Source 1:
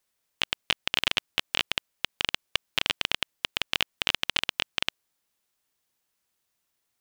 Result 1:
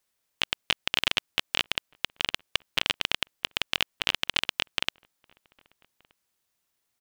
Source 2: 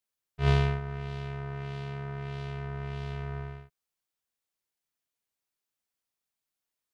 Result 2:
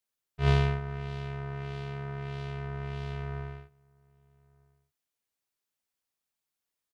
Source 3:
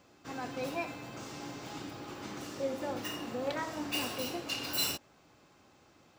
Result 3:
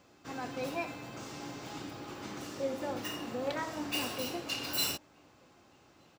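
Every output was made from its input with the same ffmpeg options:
-filter_complex "[0:a]asplit=2[link_01][link_02];[link_02]adelay=1224,volume=-28dB,highshelf=frequency=4000:gain=-27.6[link_03];[link_01][link_03]amix=inputs=2:normalize=0"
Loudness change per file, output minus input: 0.0, 0.0, 0.0 LU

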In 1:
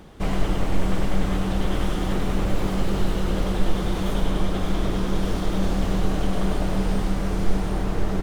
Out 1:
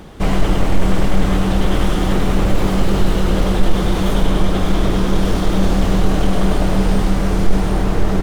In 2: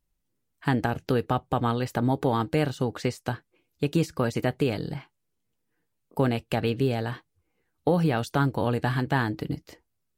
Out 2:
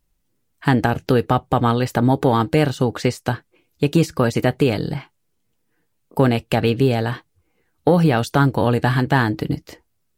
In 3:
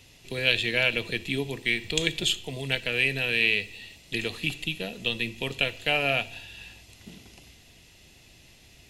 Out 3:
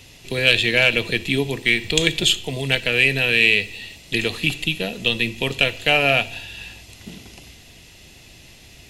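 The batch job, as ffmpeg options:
-af "acontrast=59,volume=2dB"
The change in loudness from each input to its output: +8.0, +8.0, +8.0 LU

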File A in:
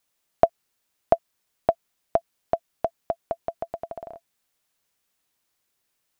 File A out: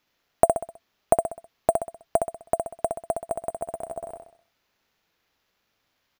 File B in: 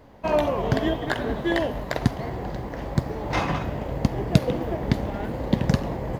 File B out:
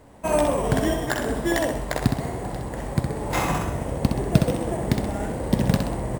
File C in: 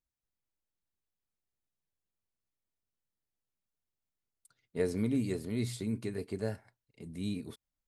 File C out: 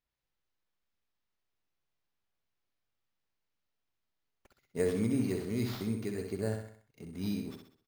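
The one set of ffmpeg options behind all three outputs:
-af "acrusher=samples=5:mix=1:aa=0.000001,aecho=1:1:64|128|192|256|320:0.531|0.234|0.103|0.0452|0.0199"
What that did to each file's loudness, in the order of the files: +1.0, +1.5, +1.0 LU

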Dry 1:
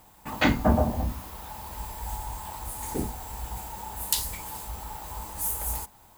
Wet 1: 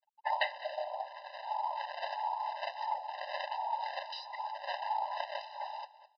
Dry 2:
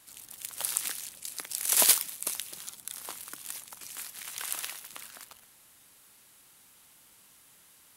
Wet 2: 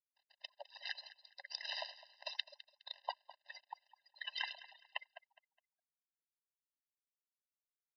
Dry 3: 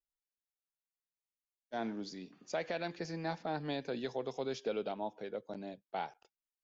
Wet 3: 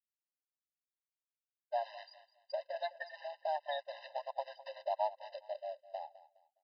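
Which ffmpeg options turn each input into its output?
-filter_complex "[0:a]afftfilt=real='re*gte(hypot(re,im),0.0126)':imag='im*gte(hypot(re,im),0.0126)':win_size=1024:overlap=0.75,acrossover=split=330[link_01][link_02];[link_01]asoftclip=type=tanh:threshold=-20.5dB[link_03];[link_02]equalizer=frequency=1200:width=4.5:gain=-8[link_04];[link_03][link_04]amix=inputs=2:normalize=0,acompressor=threshold=-35dB:ratio=12,acrossover=split=520[link_05][link_06];[link_05]aeval=exprs='val(0)*(1-1/2+1/2*cos(2*PI*1.5*n/s))':channel_layout=same[link_07];[link_06]aeval=exprs='val(0)*(1-1/2-1/2*cos(2*PI*1.5*n/s))':channel_layout=same[link_08];[link_07][link_08]amix=inputs=2:normalize=0,asubboost=boost=12:cutoff=55,acrusher=bits=3:mode=log:mix=0:aa=0.000001,asplit=2[link_09][link_10];[link_10]aecho=0:1:207|414|621:0.141|0.041|0.0119[link_11];[link_09][link_11]amix=inputs=2:normalize=0,aresample=11025,aresample=44100,afftfilt=real='re*eq(mod(floor(b*sr/1024/520),2),1)':imag='im*eq(mod(floor(b*sr/1024/520),2),1)':win_size=1024:overlap=0.75,volume=12dB"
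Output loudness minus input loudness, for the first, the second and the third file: −7.5, −16.5, −1.0 LU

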